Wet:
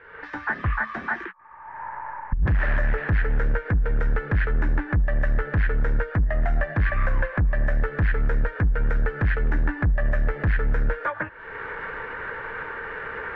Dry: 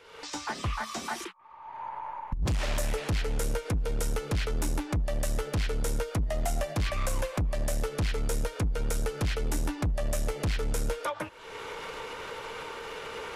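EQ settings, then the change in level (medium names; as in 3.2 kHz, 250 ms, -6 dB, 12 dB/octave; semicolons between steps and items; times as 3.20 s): resonant low-pass 1.7 kHz, resonance Q 7.6; distance through air 74 m; bass shelf 210 Hz +8.5 dB; 0.0 dB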